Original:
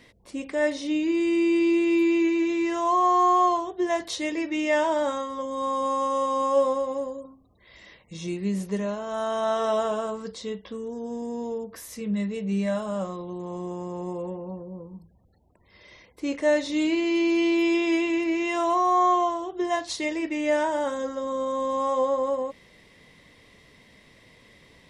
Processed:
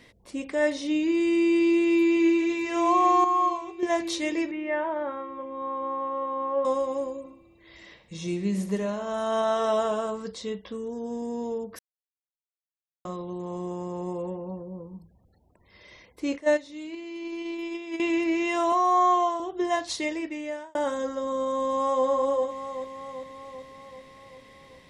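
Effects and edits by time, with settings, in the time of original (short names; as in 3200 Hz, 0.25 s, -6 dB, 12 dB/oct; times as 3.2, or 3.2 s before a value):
1.56–2.51 echo throw 0.6 s, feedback 65%, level -8.5 dB
3.24–3.83 resonator 270 Hz, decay 0.54 s
4.51–6.65 ladder low-pass 2500 Hz, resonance 25%
7.2–9.42 feedback echo 63 ms, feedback 57%, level -12 dB
11.79–13.05 mute
16.38–18 gate -21 dBFS, range -14 dB
18.72–19.4 HPF 340 Hz
19.97–20.75 fade out
21.63–22.06 echo throw 0.39 s, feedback 65%, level -6.5 dB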